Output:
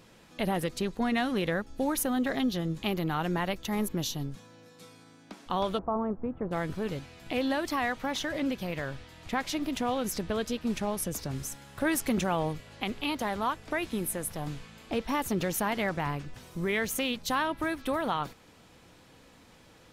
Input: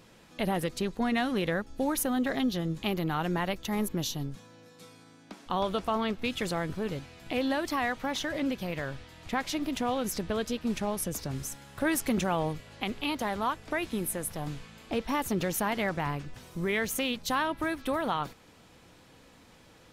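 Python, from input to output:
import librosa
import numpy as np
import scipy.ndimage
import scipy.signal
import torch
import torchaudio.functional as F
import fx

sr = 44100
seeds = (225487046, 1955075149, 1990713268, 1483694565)

y = fx.lowpass(x, sr, hz=1100.0, slope=24, at=(5.77, 6.51), fade=0.02)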